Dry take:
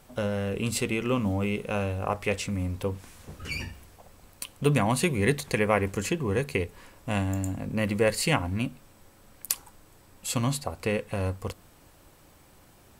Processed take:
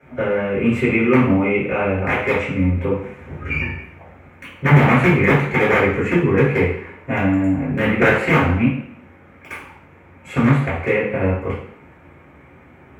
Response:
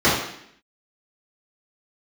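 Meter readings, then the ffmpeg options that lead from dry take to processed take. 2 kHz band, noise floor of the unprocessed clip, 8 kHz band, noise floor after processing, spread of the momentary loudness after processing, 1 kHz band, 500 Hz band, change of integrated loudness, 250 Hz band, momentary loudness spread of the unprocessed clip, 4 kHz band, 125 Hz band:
+13.0 dB, -56 dBFS, under -10 dB, -47 dBFS, 14 LU, +10.5 dB, +10.0 dB, +10.5 dB, +11.5 dB, 13 LU, +1.0 dB, +10.5 dB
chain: -filter_complex "[0:a]aeval=exprs='(mod(6.68*val(0)+1,2)-1)/6.68':c=same,highshelf=f=3.2k:t=q:w=3:g=-13[a];[1:a]atrim=start_sample=2205,asetrate=48510,aresample=44100[b];[a][b]afir=irnorm=-1:irlink=0,volume=-13.5dB"

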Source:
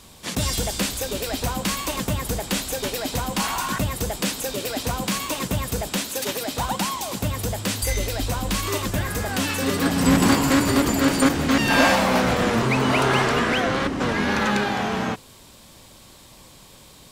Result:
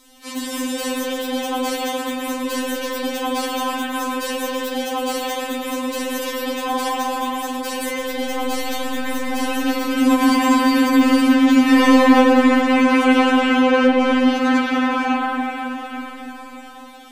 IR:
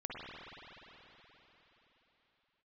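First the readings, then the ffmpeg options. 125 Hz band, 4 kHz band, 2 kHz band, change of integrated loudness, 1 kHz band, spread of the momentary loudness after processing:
under -20 dB, +0.5 dB, +2.0 dB, +4.0 dB, +4.5 dB, 12 LU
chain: -filter_complex "[1:a]atrim=start_sample=2205,asetrate=38367,aresample=44100[a];[0:a][a]afir=irnorm=-1:irlink=0,afftfilt=real='re*3.46*eq(mod(b,12),0)':imag='im*3.46*eq(mod(b,12),0)':win_size=2048:overlap=0.75,volume=3dB"

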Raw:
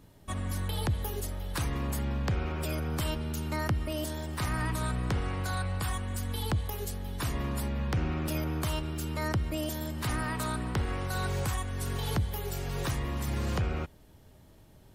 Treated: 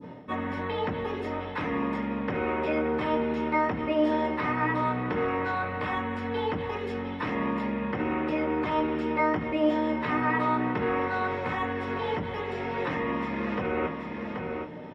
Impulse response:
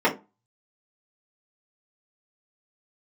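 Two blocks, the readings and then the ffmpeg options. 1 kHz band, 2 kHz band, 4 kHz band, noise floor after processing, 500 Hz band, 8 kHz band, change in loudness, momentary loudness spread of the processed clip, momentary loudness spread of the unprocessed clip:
+9.5 dB, +7.0 dB, -3.0 dB, -37 dBFS, +10.0 dB, under -20 dB, +4.0 dB, 7 LU, 4 LU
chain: -filter_complex "[0:a]highpass=80,asplit=2[a][b];[b]alimiter=level_in=2dB:limit=-24dB:level=0:latency=1,volume=-2dB,volume=1dB[c];[a][c]amix=inputs=2:normalize=0,aecho=1:1:780:0.141,volume=20.5dB,asoftclip=hard,volume=-20.5dB,areverse,acompressor=threshold=-37dB:ratio=6,areverse,lowpass=3.6k,bandreject=f=60:t=h:w=6,bandreject=f=120:t=h:w=6,adynamicequalizer=threshold=0.00141:dfrequency=2200:dqfactor=0.8:tfrequency=2200:tqfactor=0.8:attack=5:release=100:ratio=0.375:range=2.5:mode=boostabove:tftype=bell[d];[1:a]atrim=start_sample=2205,atrim=end_sample=3087[e];[d][e]afir=irnorm=-1:irlink=0,volume=-6.5dB"

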